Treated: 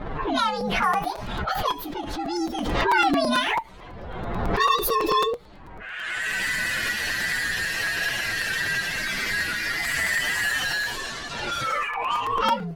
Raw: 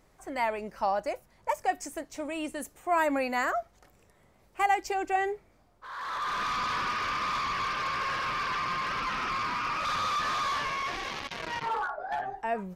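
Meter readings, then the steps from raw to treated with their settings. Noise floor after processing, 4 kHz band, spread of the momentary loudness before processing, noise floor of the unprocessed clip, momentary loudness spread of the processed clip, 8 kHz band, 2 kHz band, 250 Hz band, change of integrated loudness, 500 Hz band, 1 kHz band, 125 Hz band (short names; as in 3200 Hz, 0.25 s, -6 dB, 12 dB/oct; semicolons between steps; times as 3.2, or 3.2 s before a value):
-41 dBFS, +10.0 dB, 9 LU, -63 dBFS, 10 LU, +11.0 dB, +10.0 dB, +8.5 dB, +6.5 dB, +4.5 dB, +3.5 dB, +12.0 dB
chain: inharmonic rescaling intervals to 129%; low-pass opened by the level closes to 1500 Hz, open at -33 dBFS; crackling interface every 0.11 s, samples 256, repeat, from 0.6; backwards sustainer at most 29 dB/s; gain +8.5 dB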